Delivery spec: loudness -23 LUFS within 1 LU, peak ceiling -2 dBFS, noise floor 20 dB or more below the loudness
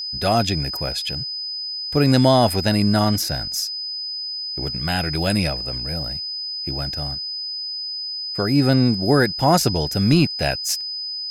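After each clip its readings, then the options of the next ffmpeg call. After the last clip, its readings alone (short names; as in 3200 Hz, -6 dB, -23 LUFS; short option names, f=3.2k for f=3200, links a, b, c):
steady tone 5000 Hz; tone level -26 dBFS; loudness -20.5 LUFS; peak -6.0 dBFS; loudness target -23.0 LUFS
-> -af "bandreject=f=5k:w=30"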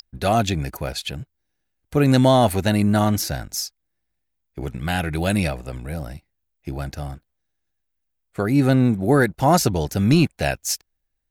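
steady tone none; loudness -20.5 LUFS; peak -6.5 dBFS; loudness target -23.0 LUFS
-> -af "volume=-2.5dB"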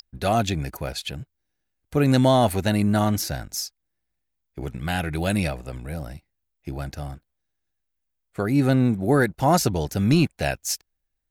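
loudness -23.0 LUFS; peak -9.0 dBFS; noise floor -78 dBFS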